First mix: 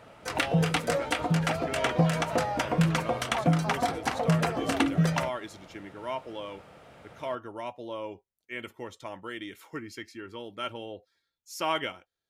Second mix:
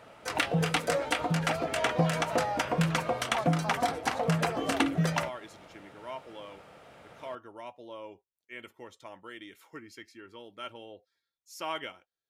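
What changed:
speech -6.0 dB; master: add bass shelf 210 Hz -6 dB

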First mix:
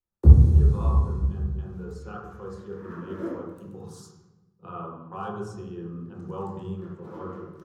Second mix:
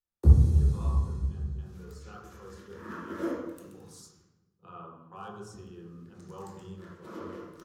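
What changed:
speech -10.5 dB; first sound -5.5 dB; master: add treble shelf 2.2 kHz +11 dB

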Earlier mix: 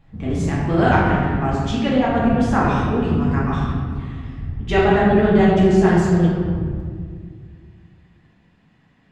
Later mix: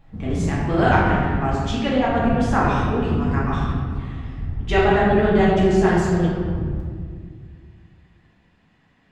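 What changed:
background +4.5 dB; master: add peaking EQ 120 Hz -5.5 dB 2.4 oct

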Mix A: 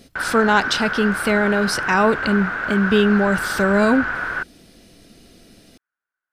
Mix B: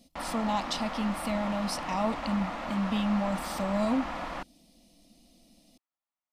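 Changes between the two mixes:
speech -10.0 dB; master: add static phaser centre 410 Hz, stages 6

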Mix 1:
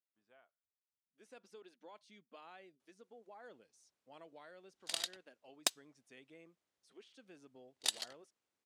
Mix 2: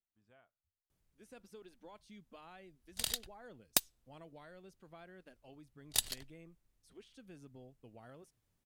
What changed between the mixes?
background: entry -1.90 s; master: remove band-pass 340–7500 Hz

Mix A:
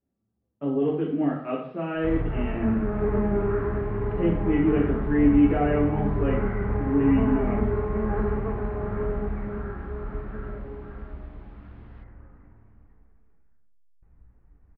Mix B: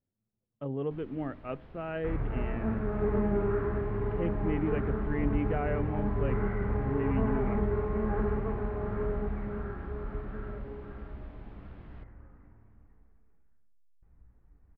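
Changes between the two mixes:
speech: send off; first sound: remove high-pass 760 Hz; second sound -4.0 dB

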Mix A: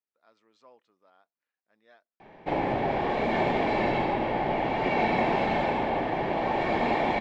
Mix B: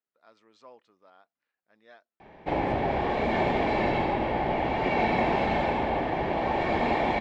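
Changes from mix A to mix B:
speech +5.0 dB; master: add peaking EQ 64 Hz +12.5 dB 0.59 oct

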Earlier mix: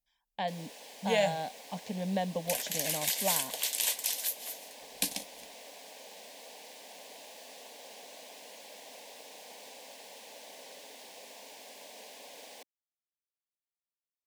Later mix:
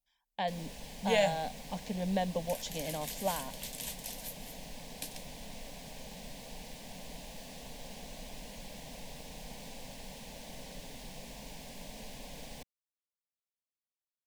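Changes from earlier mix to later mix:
first sound: remove high-pass 340 Hz 24 dB/octave; second sound -11.5 dB

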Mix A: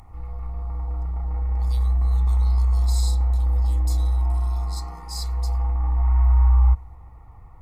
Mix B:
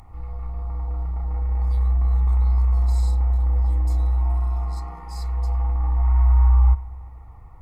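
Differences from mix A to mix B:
speech -11.0 dB; background: send +9.5 dB

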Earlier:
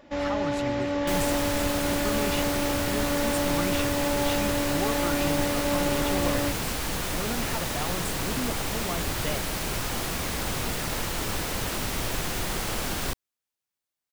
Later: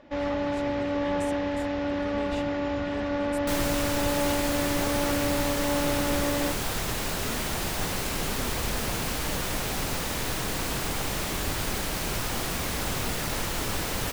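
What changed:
speech -8.0 dB; first sound: add distance through air 110 m; second sound: entry +2.40 s

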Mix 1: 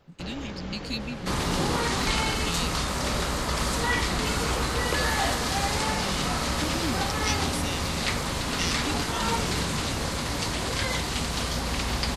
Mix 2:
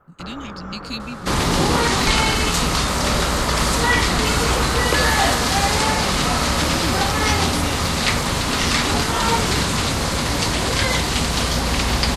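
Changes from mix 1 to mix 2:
speech +3.0 dB; first sound: add resonant low-pass 1.3 kHz, resonance Q 5.1; second sound +8.5 dB

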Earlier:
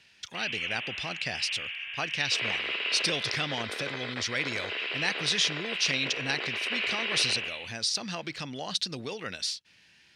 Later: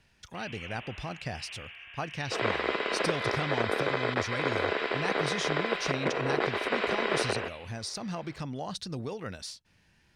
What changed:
second sound +11.5 dB; master: remove frequency weighting D

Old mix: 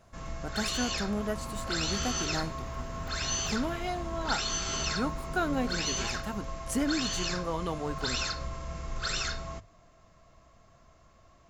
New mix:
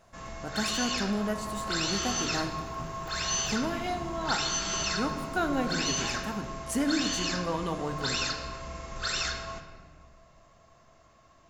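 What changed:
first sound: add bass shelf 140 Hz -11 dB; second sound: add static phaser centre 370 Hz, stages 8; reverb: on, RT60 1.6 s

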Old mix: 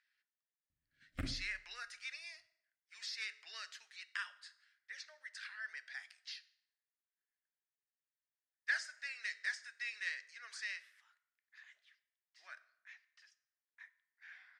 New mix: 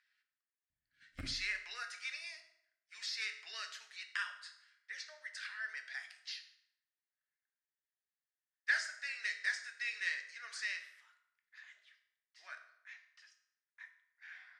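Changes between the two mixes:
speech: send +11.0 dB; background -5.0 dB

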